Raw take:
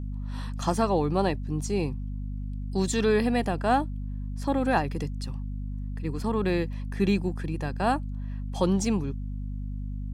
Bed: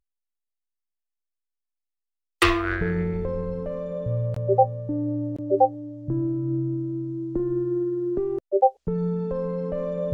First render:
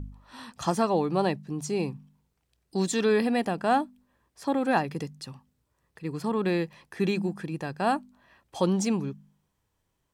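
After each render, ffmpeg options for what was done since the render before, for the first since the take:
-af "bandreject=f=50:t=h:w=4,bandreject=f=100:t=h:w=4,bandreject=f=150:t=h:w=4,bandreject=f=200:t=h:w=4,bandreject=f=250:t=h:w=4"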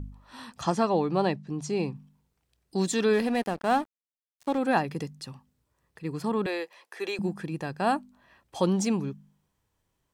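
-filter_complex "[0:a]asettb=1/sr,asplit=3[a][b][c];[a]atrim=end=0.614[d];[b]atrim=start=0.61:end=1.95,asetpts=PTS-STARTPTS,afade=t=in:d=0.004:c=qsin,afade=t=out:st=1.336:d=0.004:c=qsin,lowpass=7k[e];[c]atrim=start=1.946[f];[d][e]acrossfade=d=0.004:c1=hsin:c2=qsin[g];[g][f]acrossfade=d=0.004:c1=qsin:c2=hsin,asettb=1/sr,asplit=3[h][i][j];[h]atrim=end=3.134[k];[i]atrim=start=3.13:end=4.58,asetpts=PTS-STARTPTS,afade=t=in:d=0.004:c=qsin,afade=t=out:st=1.446:d=0.004:c=qsin,aeval=exprs='sgn(val(0))*max(abs(val(0))-0.0112,0)':c=same[l];[j]atrim=start=4.576[m];[k][l]acrossfade=d=0.004:c1=hsin:c2=qsin[n];[n][m]acrossfade=d=0.004:c1=qsin:c2=hsin,asettb=1/sr,asplit=3[o][p][q];[o]atrim=end=6.464[r];[p]atrim=start=6.46:end=7.19,asetpts=PTS-STARTPTS,afade=t=in:d=0.004:c=qsin,afade=t=out:st=0.726:d=0.004:c=qsin,highpass=f=420:w=0.5412,highpass=f=420:w=1.3066[s];[q]atrim=start=7.186[t];[r][s]acrossfade=d=0.004:c1=hsin:c2=qsin[u];[u][t]acrossfade=d=0.004:c1=qsin:c2=hsin"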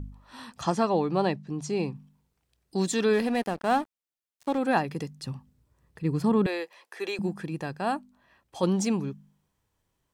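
-filter_complex "[0:a]asettb=1/sr,asplit=3[a][b][c];[a]atrim=end=5.234[d];[b]atrim=start=5.23:end=6.47,asetpts=PTS-STARTPTS,afade=t=in:d=0.004:c=qsin,afade=t=out:st=1.236:d=0.004:c=qsin,lowshelf=f=290:g=10.5[e];[c]atrim=start=6.466[f];[d][e]acrossfade=d=0.004:c1=hsin:c2=qsin[g];[g][f]acrossfade=d=0.004:c1=qsin:c2=hsin,asplit=3[h][i][j];[h]atrim=end=7.782[k];[i]atrim=start=7.778:end=8.632,asetpts=PTS-STARTPTS,volume=-3dB[l];[j]atrim=start=8.628[m];[k][l]acrossfade=d=0.004:c1=hsin:c2=hsin[n];[n][m]acrossfade=d=0.004:c1=hsin:c2=hsin"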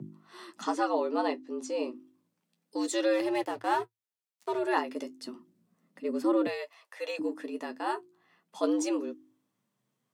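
-af "flanger=delay=8.6:depth=3.6:regen=-42:speed=0.31:shape=sinusoidal,afreqshift=110"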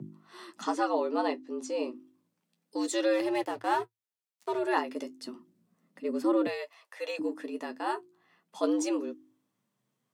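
-af anull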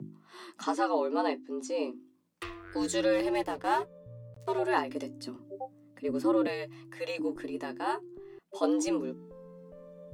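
-filter_complex "[1:a]volume=-22dB[a];[0:a][a]amix=inputs=2:normalize=0"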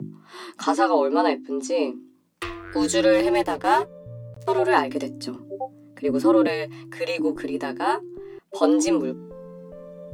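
-af "volume=9dB"

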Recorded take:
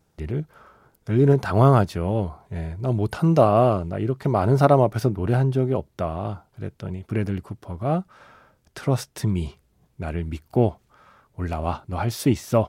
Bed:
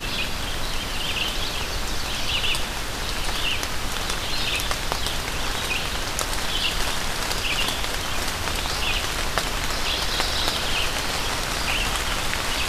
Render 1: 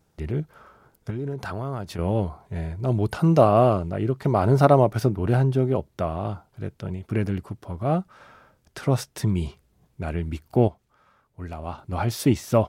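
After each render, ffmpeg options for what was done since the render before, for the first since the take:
-filter_complex "[0:a]asettb=1/sr,asplit=3[a][b][c];[a]atrim=end=1.104[d];[b]atrim=start=1.1:end=1.99,asetpts=PTS-STARTPTS,afade=t=in:d=0.004:c=qsin,afade=t=out:st=0.886:d=0.004:c=qsin,acompressor=threshold=-28dB:ratio=5:attack=3.2:release=140:knee=1:detection=peak[e];[c]atrim=start=1.986[f];[d][e]acrossfade=d=0.004:c1=hsin:c2=qsin[g];[g][f]acrossfade=d=0.004:c1=qsin:c2=hsin,asplit=3[h][i][j];[h]atrim=end=10.682[k];[i]atrim=start=10.678:end=11.782,asetpts=PTS-STARTPTS,volume=-7.5dB[l];[j]atrim=start=11.778[m];[k][l]acrossfade=d=0.004:c1=hsin:c2=hsin[n];[n][m]acrossfade=d=0.004:c1=hsin:c2=hsin"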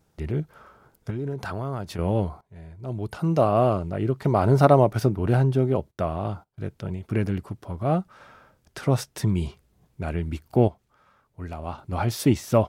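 -filter_complex "[0:a]asplit=3[a][b][c];[a]afade=t=out:st=5.9:d=0.02[d];[b]agate=range=-19dB:threshold=-52dB:ratio=16:release=100:detection=peak,afade=t=in:st=5.9:d=0.02,afade=t=out:st=6.66:d=0.02[e];[c]afade=t=in:st=6.66:d=0.02[f];[d][e][f]amix=inputs=3:normalize=0,asplit=2[g][h];[g]atrim=end=2.41,asetpts=PTS-STARTPTS,afade=t=out:st=2.406:d=0.004:c=hsin:silence=0.112202[i];[h]atrim=start=2.41,asetpts=PTS-STARTPTS,afade=t=in:d=1.71:silence=0.112202[j];[i][j]concat=n=2:v=0:a=1"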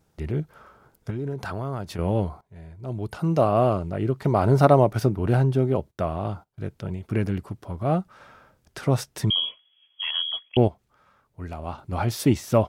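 -filter_complex "[0:a]asettb=1/sr,asplit=3[a][b][c];[a]atrim=end=9.304[d];[b]atrim=start=9.3:end=10.57,asetpts=PTS-STARTPTS,afade=t=in:d=0.004:c=qsin,afade=t=out:st=1.266:d=0.004:c=qsin,lowpass=f=2.9k:t=q:w=0.5098,lowpass=f=2.9k:t=q:w=0.6013,lowpass=f=2.9k:t=q:w=0.9,lowpass=f=2.9k:t=q:w=2.563,afreqshift=-3400[e];[c]atrim=start=10.566[f];[d][e]acrossfade=d=0.004:c1=hsin:c2=qsin[g];[g][f]acrossfade=d=0.004:c1=qsin:c2=hsin"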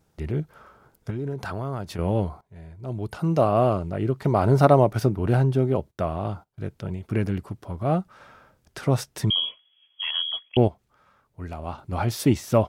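-af anull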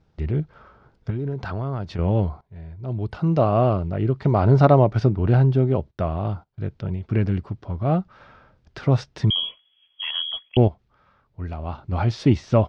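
-af "lowpass=f=5k:w=0.5412,lowpass=f=5k:w=1.3066,lowshelf=f=130:g=8.5"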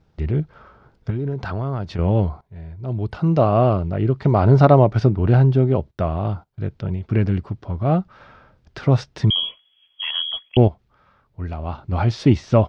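-af "volume=2.5dB,alimiter=limit=-1dB:level=0:latency=1"

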